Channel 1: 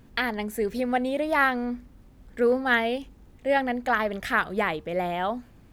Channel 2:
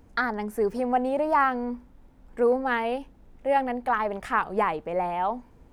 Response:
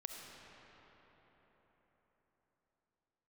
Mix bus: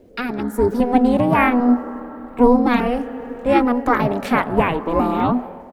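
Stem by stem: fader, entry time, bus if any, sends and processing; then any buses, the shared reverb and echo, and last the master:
0.0 dB, 0.00 s, no send, ring modulation 490 Hz; step-sequenced phaser 2.5 Hz 250–1,700 Hz
−8.0 dB, 1.7 ms, polarity flipped, send −3.5 dB, no processing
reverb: on, RT60 4.7 s, pre-delay 25 ms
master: parametric band 260 Hz +12.5 dB 1.6 octaves; automatic gain control gain up to 8 dB

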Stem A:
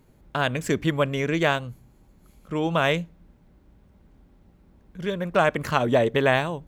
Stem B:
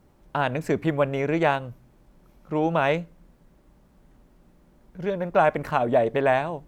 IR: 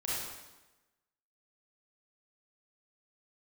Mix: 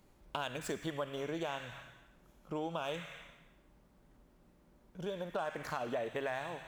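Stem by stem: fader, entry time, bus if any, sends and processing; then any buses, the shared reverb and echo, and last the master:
−0.5 dB, 0.00 s, send −16 dB, running median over 3 samples; guitar amp tone stack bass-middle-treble 10-0-10; leveller curve on the samples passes 1; automatic ducking −12 dB, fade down 1.35 s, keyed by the second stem
−6.5 dB, 0.00 s, no send, low-shelf EQ 73 Hz −11 dB; brickwall limiter −13 dBFS, peak gain reduction 5.5 dB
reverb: on, RT60 1.1 s, pre-delay 28 ms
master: downward compressor 2.5 to 1, threshold −39 dBFS, peak gain reduction 11.5 dB

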